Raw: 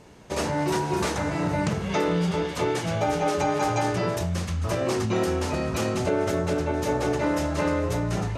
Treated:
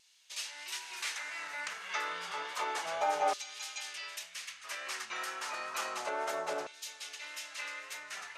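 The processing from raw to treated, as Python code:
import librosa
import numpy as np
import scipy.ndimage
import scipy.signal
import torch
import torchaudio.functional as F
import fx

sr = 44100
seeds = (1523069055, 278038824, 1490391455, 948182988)

y = fx.filter_lfo_highpass(x, sr, shape='saw_down', hz=0.3, low_hz=720.0, high_hz=3800.0, q=1.5)
y = fx.wow_flutter(y, sr, seeds[0], rate_hz=2.1, depth_cents=23.0)
y = F.gain(torch.from_numpy(y), -6.0).numpy()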